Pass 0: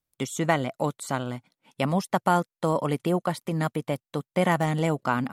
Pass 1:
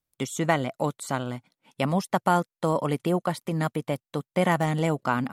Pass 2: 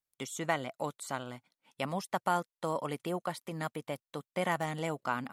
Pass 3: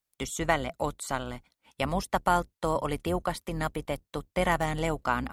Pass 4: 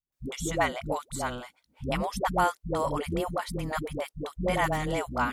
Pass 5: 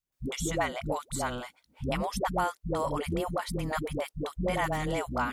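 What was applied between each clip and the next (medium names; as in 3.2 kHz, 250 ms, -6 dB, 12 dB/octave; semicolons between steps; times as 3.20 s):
no audible change
bass shelf 380 Hz -8.5 dB; trim -6 dB
octave divider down 2 oct, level -4 dB; trim +5.5 dB
phase dispersion highs, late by 123 ms, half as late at 360 Hz
compression 2:1, threshold -32 dBFS, peak gain reduction 7.5 dB; trim +2.5 dB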